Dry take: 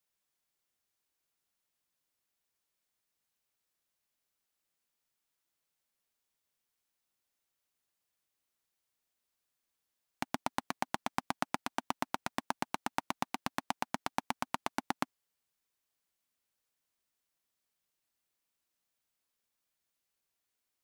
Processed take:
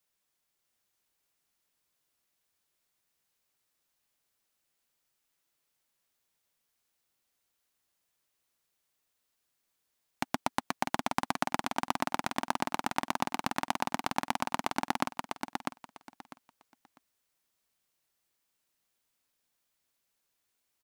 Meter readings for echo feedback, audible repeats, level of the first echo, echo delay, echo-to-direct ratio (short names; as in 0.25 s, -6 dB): 20%, 3, -4.5 dB, 0.649 s, -4.5 dB